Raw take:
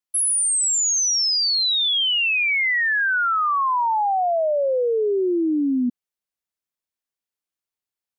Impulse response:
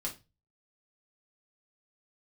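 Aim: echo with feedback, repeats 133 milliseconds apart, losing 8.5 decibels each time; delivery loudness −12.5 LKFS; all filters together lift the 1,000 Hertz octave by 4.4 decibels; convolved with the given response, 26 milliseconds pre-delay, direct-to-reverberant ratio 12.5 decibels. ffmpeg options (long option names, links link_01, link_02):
-filter_complex "[0:a]equalizer=frequency=1000:width_type=o:gain=5.5,aecho=1:1:133|266|399|532:0.376|0.143|0.0543|0.0206,asplit=2[link_01][link_02];[1:a]atrim=start_sample=2205,adelay=26[link_03];[link_02][link_03]afir=irnorm=-1:irlink=0,volume=-14dB[link_04];[link_01][link_04]amix=inputs=2:normalize=0,volume=4dB"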